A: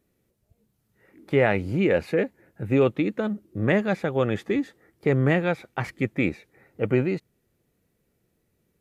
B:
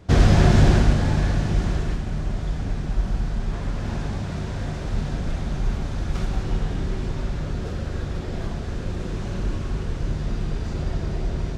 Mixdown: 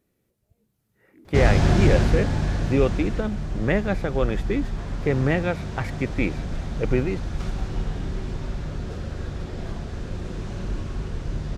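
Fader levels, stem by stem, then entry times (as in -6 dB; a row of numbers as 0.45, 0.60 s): -1.0, -3.0 dB; 0.00, 1.25 s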